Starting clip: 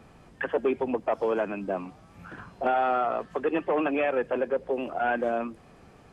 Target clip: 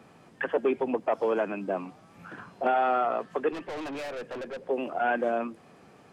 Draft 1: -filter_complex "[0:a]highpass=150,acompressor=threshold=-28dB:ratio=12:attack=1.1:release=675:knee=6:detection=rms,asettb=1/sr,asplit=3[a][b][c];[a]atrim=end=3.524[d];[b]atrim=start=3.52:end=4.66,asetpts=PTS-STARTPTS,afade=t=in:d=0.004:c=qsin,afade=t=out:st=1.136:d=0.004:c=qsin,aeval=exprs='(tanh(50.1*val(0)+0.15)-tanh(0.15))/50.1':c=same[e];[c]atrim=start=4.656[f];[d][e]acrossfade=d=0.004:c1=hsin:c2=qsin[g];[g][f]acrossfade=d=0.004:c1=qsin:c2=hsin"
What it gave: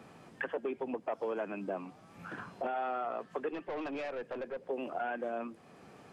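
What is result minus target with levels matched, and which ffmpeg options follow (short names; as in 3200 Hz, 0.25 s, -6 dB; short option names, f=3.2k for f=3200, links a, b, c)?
compressor: peak gain reduction +12.5 dB
-filter_complex "[0:a]highpass=150,asettb=1/sr,asplit=3[a][b][c];[a]atrim=end=3.524[d];[b]atrim=start=3.52:end=4.66,asetpts=PTS-STARTPTS,afade=t=in:d=0.004:c=qsin,afade=t=out:st=1.136:d=0.004:c=qsin,aeval=exprs='(tanh(50.1*val(0)+0.15)-tanh(0.15))/50.1':c=same[e];[c]atrim=start=4.656[f];[d][e]acrossfade=d=0.004:c1=hsin:c2=qsin[g];[g][f]acrossfade=d=0.004:c1=qsin:c2=hsin"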